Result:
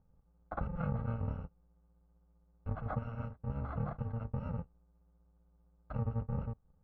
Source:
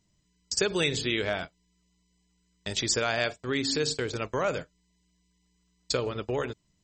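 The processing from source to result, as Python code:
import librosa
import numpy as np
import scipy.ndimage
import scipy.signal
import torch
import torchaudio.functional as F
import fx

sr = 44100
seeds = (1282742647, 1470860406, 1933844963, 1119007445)

y = fx.bit_reversed(x, sr, seeds[0], block=128)
y = scipy.signal.sosfilt(scipy.signal.butter(4, 1100.0, 'lowpass', fs=sr, output='sos'), y)
y = fx.low_shelf(y, sr, hz=100.0, db=8.5)
y = F.gain(torch.from_numpy(y), 1.0).numpy()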